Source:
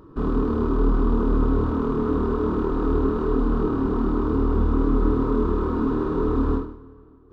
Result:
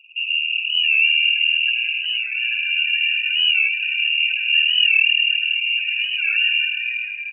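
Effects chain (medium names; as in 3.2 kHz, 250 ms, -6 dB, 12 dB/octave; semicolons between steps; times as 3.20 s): dynamic bell 260 Hz, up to -8 dB, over -39 dBFS, Q 3.7; in parallel at -7 dB: companded quantiser 2-bit; on the sum: overload inside the chain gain 20.5 dB; loudest bins only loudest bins 16; bands offset in time lows, highs 610 ms, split 280 Hz; on a send at -1.5 dB: reverberation RT60 0.95 s, pre-delay 60 ms; on the sum: frequency inversion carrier 2.8 kHz; warped record 45 rpm, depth 100 cents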